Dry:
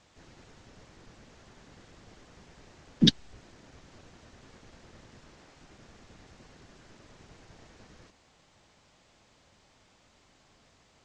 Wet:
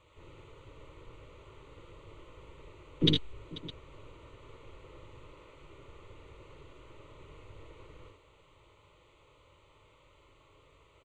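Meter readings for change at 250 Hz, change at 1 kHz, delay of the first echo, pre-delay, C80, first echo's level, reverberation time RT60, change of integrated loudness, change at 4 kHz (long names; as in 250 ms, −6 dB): −5.5 dB, +1.5 dB, 58 ms, no reverb audible, no reverb audible, −6.0 dB, no reverb audible, −7.5 dB, −3.0 dB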